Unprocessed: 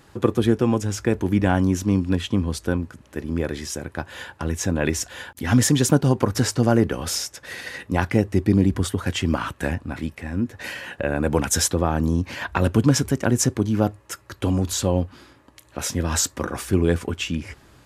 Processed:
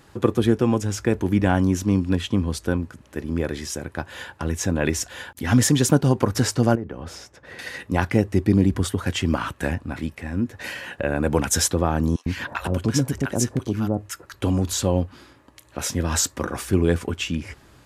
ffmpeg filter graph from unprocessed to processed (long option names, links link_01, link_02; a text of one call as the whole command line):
ffmpeg -i in.wav -filter_complex "[0:a]asettb=1/sr,asplit=3[link_01][link_02][link_03];[link_01]atrim=end=6.754[link_04];[link_02]atrim=start=6.75:end=7.59,asetpts=PTS-STARTPTS,afade=type=in:duration=0.004:curve=qsin,afade=type=out:start_time=0.836:duration=0.004:curve=qsin,lowpass=frequency=1000:poles=1,acompressor=threshold=-31dB:ratio=2.5:attack=3.2:release=140:knee=1:detection=peak[link_05];[link_03]atrim=start=7.586[link_06];[link_04][link_05]acrossfade=duration=0.004:curve1=hsin:curve2=qsin[link_07];[link_07][link_06]acrossfade=duration=0.004:curve1=qsin:curve2=hsin,asettb=1/sr,asplit=3[link_08][link_09][link_10];[link_08]atrim=end=12.164[link_11];[link_09]atrim=start=12.16:end=14.34,asetpts=PTS-STARTPTS,afade=type=in:duration=0.004:curve=qsin,afade=type=out:start_time=2.176:duration=0.004:curve=qsin,acrossover=split=920[link_12][link_13];[link_12]adelay=100[link_14];[link_14][link_13]amix=inputs=2:normalize=0,atrim=end_sample=96138,acompressor=threshold=-22dB:ratio=1.5:attack=3.2:release=140:knee=1:detection=peak[link_15];[link_10]atrim=start=14.336[link_16];[link_11][link_15]acrossfade=duration=0.004:curve1=hsin:curve2=qsin[link_17];[link_17][link_16]acrossfade=duration=0.004:curve1=qsin:curve2=hsin" out.wav